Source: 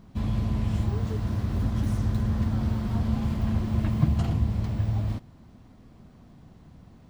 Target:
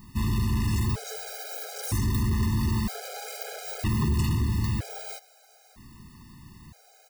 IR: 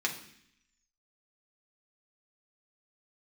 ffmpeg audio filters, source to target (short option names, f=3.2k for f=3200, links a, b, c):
-filter_complex "[0:a]bandreject=f=3.3k:w=5.3,aecho=1:1:1.1:0.38,asoftclip=type=hard:threshold=-22dB,crystalizer=i=8.5:c=0,asplit=2[a][b];[1:a]atrim=start_sample=2205,lowpass=5.1k[c];[b][c]afir=irnorm=-1:irlink=0,volume=-19.5dB[d];[a][d]amix=inputs=2:normalize=0,afftfilt=real='re*gt(sin(2*PI*0.52*pts/sr)*(1-2*mod(floor(b*sr/1024/420),2)),0)':imag='im*gt(sin(2*PI*0.52*pts/sr)*(1-2*mod(floor(b*sr/1024/420),2)),0)':win_size=1024:overlap=0.75"